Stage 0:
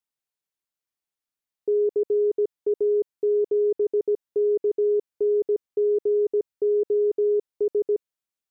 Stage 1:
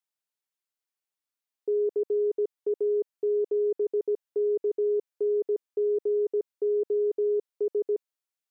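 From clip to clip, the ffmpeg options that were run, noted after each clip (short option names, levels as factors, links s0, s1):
-af "highpass=f=370:p=1,volume=0.841"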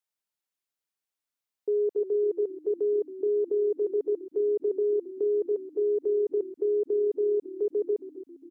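-filter_complex "[0:a]asplit=5[s0][s1][s2][s3][s4];[s1]adelay=271,afreqshift=-36,volume=0.178[s5];[s2]adelay=542,afreqshift=-72,volume=0.0851[s6];[s3]adelay=813,afreqshift=-108,volume=0.0407[s7];[s4]adelay=1084,afreqshift=-144,volume=0.0197[s8];[s0][s5][s6][s7][s8]amix=inputs=5:normalize=0"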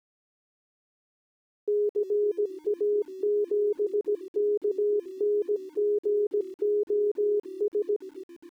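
-af "aeval=exprs='val(0)*gte(abs(val(0)),0.00251)':c=same"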